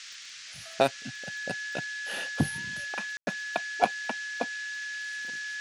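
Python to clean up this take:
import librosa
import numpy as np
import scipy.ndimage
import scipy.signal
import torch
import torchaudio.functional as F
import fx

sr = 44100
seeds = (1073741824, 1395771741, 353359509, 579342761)

y = fx.fix_declick_ar(x, sr, threshold=6.5)
y = fx.notch(y, sr, hz=1700.0, q=30.0)
y = fx.fix_ambience(y, sr, seeds[0], print_start_s=0.0, print_end_s=0.5, start_s=3.17, end_s=3.27)
y = fx.noise_reduce(y, sr, print_start_s=0.0, print_end_s=0.5, reduce_db=30.0)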